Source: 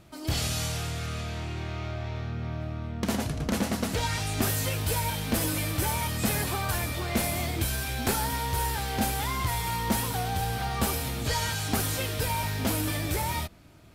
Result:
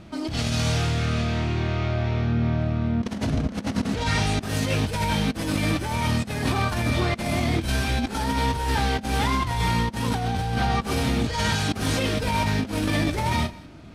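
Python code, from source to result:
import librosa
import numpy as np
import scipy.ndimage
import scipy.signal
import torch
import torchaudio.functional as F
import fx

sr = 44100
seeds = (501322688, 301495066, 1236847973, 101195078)

y = fx.peak_eq(x, sr, hz=230.0, db=7.0, octaves=0.66)
y = fx.notch(y, sr, hz=7300.0, q=17.0)
y = fx.doubler(y, sr, ms=34.0, db=-10.5)
y = y + 10.0 ** (-22.0 / 20.0) * np.pad(y, (int(192 * sr / 1000.0), 0))[:len(y)]
y = fx.over_compress(y, sr, threshold_db=-29.0, ratio=-0.5)
y = fx.air_absorb(y, sr, metres=70.0)
y = y * 10.0 ** (6.0 / 20.0)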